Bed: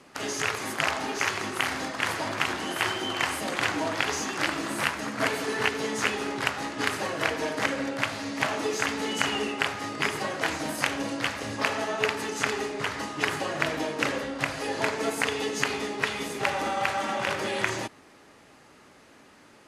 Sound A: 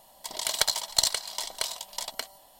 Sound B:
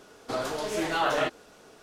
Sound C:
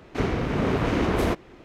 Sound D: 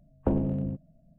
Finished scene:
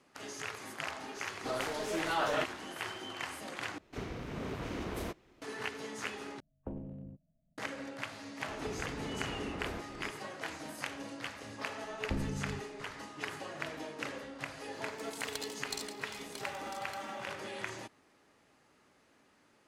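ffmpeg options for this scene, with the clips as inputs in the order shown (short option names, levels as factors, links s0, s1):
-filter_complex "[3:a]asplit=2[s0][s1];[4:a]asplit=2[s2][s3];[0:a]volume=0.224[s4];[s0]highshelf=f=4300:g=10[s5];[s1]acompressor=threshold=0.01:ratio=6:attack=3.2:release=140:knee=1:detection=peak[s6];[s3]lowshelf=f=180:g=10.5[s7];[s4]asplit=3[s8][s9][s10];[s8]atrim=end=3.784[s11];[s5]atrim=end=1.64,asetpts=PTS-STARTPTS,volume=0.158[s12];[s9]atrim=start=5.416:end=6.404[s13];[s2]atrim=end=1.18,asetpts=PTS-STARTPTS,volume=0.15[s14];[s10]atrim=start=7.576[s15];[2:a]atrim=end=1.82,asetpts=PTS-STARTPTS,volume=0.501,afade=t=in:d=0.004:c=hsin,afade=t=out:st=1.816:d=0.004:c=hsin,adelay=1160[s16];[s6]atrim=end=1.64,asetpts=PTS-STARTPTS,afade=t=in:d=0.004:c=hsin,afade=t=out:st=1.636:d=0.004:c=hsin,adelay=8470[s17];[s7]atrim=end=1.18,asetpts=PTS-STARTPTS,volume=0.178,afade=t=in:d=0.004:c=hsin,afade=t=out:st=1.176:d=0.004:c=hsin,adelay=11840[s18];[1:a]atrim=end=2.59,asetpts=PTS-STARTPTS,volume=0.133,afade=t=in:d=0.004:c=hsin,afade=t=out:st=2.586:d=0.004:c=hsin,adelay=14740[s19];[s11][s12]acrossfade=d=0.004:c1=hsin:c2=hsin[s20];[s20][s13]acrossfade=d=0.004:c1=hsin:c2=hsin[s21];[s21][s14]acrossfade=d=0.004:c1=hsin:c2=hsin[s22];[s22][s15]acrossfade=d=0.004:c1=hsin:c2=hsin[s23];[s23][s16][s17][s18][s19]amix=inputs=5:normalize=0"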